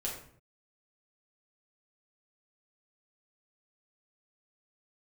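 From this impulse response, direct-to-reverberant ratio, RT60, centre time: -4.5 dB, 0.60 s, 36 ms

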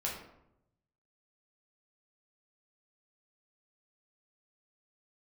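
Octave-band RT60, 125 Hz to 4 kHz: 1.4, 1.0, 0.85, 0.75, 0.60, 0.45 s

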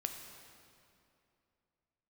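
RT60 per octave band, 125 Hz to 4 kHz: 2.9, 2.9, 2.8, 2.6, 2.3, 2.0 s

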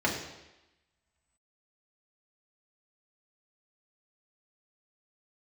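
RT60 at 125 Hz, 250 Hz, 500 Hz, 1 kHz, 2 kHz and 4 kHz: 0.85, 0.95, 0.95, 1.0, 1.0, 1.0 s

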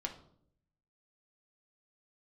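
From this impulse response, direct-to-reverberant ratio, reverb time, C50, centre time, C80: 2.0 dB, 0.65 s, 10.5 dB, 13 ms, 14.5 dB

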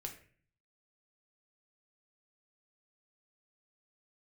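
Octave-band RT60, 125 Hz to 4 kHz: 0.85, 0.65, 0.50, 0.40, 0.50, 0.35 s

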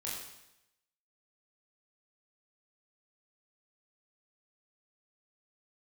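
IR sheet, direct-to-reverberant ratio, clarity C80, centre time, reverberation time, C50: -6.0 dB, 4.0 dB, 62 ms, 0.85 s, 1.5 dB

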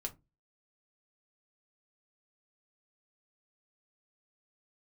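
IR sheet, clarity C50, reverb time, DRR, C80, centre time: 20.0 dB, 0.20 s, 2.5 dB, 28.0 dB, 6 ms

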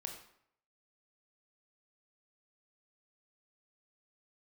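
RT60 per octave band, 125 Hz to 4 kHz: 0.70, 0.65, 0.65, 0.70, 0.60, 0.50 s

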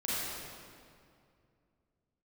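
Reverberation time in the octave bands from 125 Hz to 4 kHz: 3.1, 2.9, 2.5, 2.2, 1.9, 1.6 s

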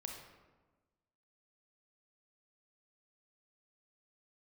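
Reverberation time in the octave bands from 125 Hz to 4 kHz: 1.5, 1.5, 1.3, 1.2, 0.95, 0.70 s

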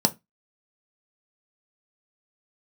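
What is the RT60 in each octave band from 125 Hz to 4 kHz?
0.25, 0.30, 0.20, 0.20, 0.20, 0.15 s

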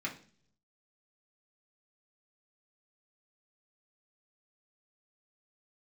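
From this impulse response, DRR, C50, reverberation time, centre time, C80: -3.5 dB, 11.5 dB, 0.50 s, 14 ms, 17.0 dB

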